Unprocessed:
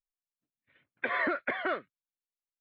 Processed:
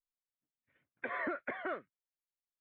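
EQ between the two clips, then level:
high-frequency loss of the air 410 metres
−5.0 dB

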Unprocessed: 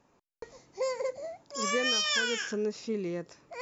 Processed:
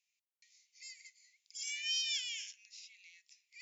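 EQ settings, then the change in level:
Butterworth high-pass 2,100 Hz 72 dB per octave
−6.0 dB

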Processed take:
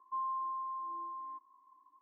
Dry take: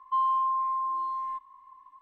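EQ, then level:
four-pole ladder band-pass 390 Hz, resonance 45%
+8.5 dB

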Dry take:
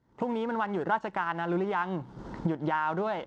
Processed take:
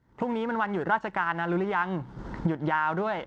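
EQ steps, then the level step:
low-shelf EQ 120 Hz +8.5 dB
parametric band 1,800 Hz +5.5 dB 1.3 octaves
0.0 dB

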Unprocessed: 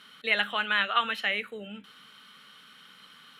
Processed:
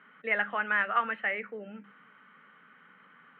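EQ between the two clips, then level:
elliptic band-pass filter 150–2,000 Hz, stop band 40 dB
mains-hum notches 50/100/150/200 Hz
0.0 dB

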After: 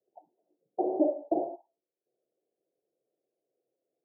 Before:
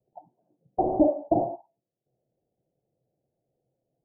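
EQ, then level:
four-pole ladder band-pass 470 Hz, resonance 45%
+5.5 dB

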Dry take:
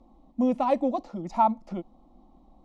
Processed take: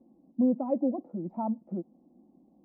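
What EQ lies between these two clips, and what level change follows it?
flat-topped band-pass 270 Hz, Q 0.78
0.0 dB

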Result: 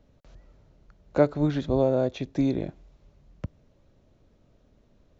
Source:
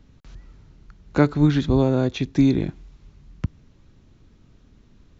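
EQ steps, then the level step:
parametric band 590 Hz +14 dB 0.79 octaves
−9.0 dB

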